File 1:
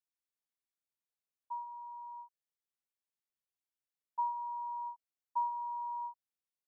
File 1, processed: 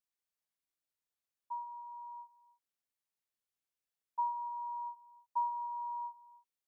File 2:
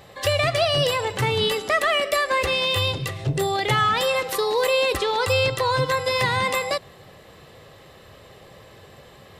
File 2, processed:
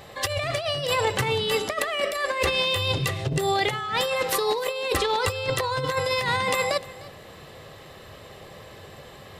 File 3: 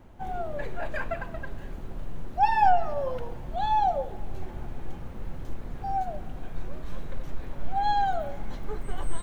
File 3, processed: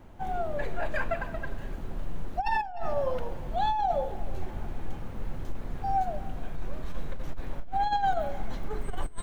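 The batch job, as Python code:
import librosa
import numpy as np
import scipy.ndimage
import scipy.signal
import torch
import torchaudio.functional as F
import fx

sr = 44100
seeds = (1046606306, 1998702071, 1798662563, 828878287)

p1 = fx.hum_notches(x, sr, base_hz=60, count=9)
p2 = fx.over_compress(p1, sr, threshold_db=-24.0, ratio=-0.5)
y = p2 + fx.echo_single(p2, sr, ms=303, db=-20.0, dry=0)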